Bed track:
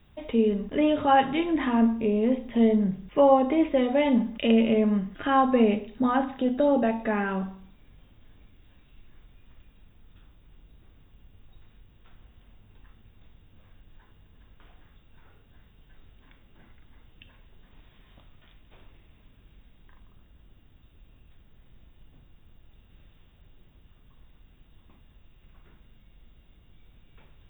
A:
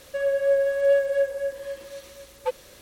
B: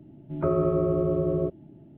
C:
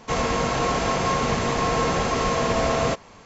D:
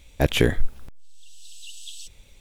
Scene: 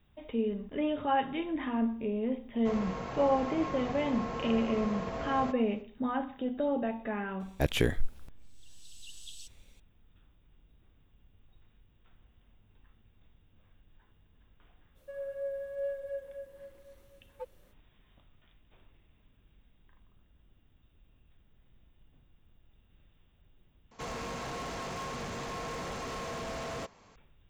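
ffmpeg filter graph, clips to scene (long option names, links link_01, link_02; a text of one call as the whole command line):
ffmpeg -i bed.wav -i cue0.wav -i cue1.wav -i cue2.wav -i cue3.wav -filter_complex "[3:a]asplit=2[link_01][link_02];[0:a]volume=-8.5dB[link_03];[link_01]aemphasis=mode=reproduction:type=75kf[link_04];[1:a]equalizer=frequency=4500:width_type=o:width=2.8:gain=-11.5[link_05];[link_02]asoftclip=type=hard:threshold=-24dB[link_06];[link_03]asplit=2[link_07][link_08];[link_07]atrim=end=23.914[link_09];[link_06]atrim=end=3.25,asetpts=PTS-STARTPTS,volume=-12dB[link_10];[link_08]atrim=start=27.156[link_11];[link_04]atrim=end=3.25,asetpts=PTS-STARTPTS,volume=-14.5dB,afade=type=in:duration=0.004:curve=hsin,afade=type=out:start_time=3.246:duration=0.004:curve=hsin,adelay=2570[link_12];[4:a]atrim=end=2.4,asetpts=PTS-STARTPTS,volume=-8dB,afade=type=in:duration=0.004:curve=hsin,afade=type=out:start_time=2.396:duration=0.004:curve=hsin,adelay=7400[link_13];[link_05]atrim=end=2.81,asetpts=PTS-STARTPTS,volume=-14.5dB,afade=type=in:duration=0.05,afade=type=out:start_time=2.76:duration=0.05,adelay=14940[link_14];[link_09][link_10]acrossfade=duration=0.004:curve1=hsin:curve2=hsin[link_15];[link_15][link_11]acrossfade=duration=0.004:curve1=hsin:curve2=hsin[link_16];[link_16][link_12][link_13][link_14]amix=inputs=4:normalize=0" out.wav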